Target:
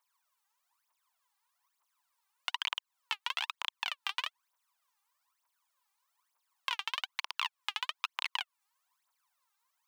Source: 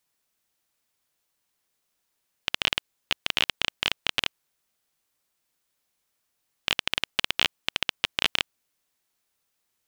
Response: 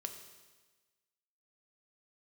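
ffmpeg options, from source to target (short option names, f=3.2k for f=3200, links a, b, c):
-filter_complex "[0:a]aphaser=in_gain=1:out_gain=1:delay=2.6:decay=0.77:speed=1.1:type=triangular,acrossover=split=1600|5100[a][b][c];[a]acompressor=threshold=-37dB:ratio=4[d];[b]acompressor=threshold=-26dB:ratio=4[e];[c]acompressor=threshold=-43dB:ratio=4[f];[d][e][f]amix=inputs=3:normalize=0,highpass=f=1k:t=q:w=5.7,volume=-8.5dB"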